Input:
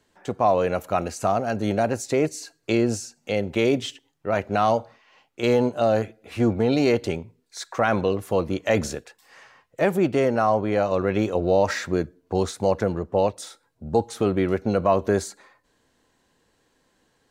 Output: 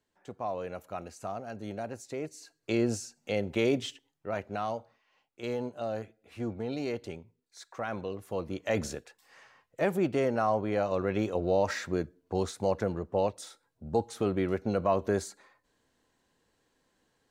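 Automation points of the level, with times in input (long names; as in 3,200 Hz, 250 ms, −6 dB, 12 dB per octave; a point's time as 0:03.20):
0:02.28 −15 dB
0:02.82 −6 dB
0:03.86 −6 dB
0:04.75 −14 dB
0:08.09 −14 dB
0:08.87 −7 dB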